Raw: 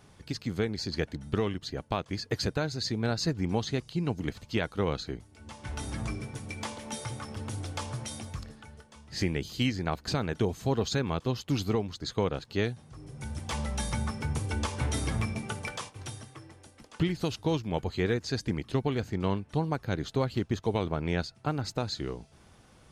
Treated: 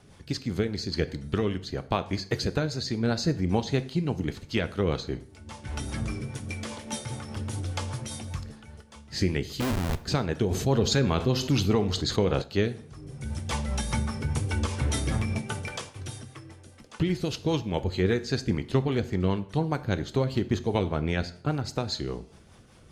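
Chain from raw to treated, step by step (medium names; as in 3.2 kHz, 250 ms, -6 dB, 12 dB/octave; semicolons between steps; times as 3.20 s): rotary cabinet horn 5 Hz; 9.60–10.01 s: Schmitt trigger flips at -33 dBFS; plate-style reverb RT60 0.55 s, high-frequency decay 0.8×, DRR 11.5 dB; 10.51–12.42 s: level flattener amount 50%; trim +4.5 dB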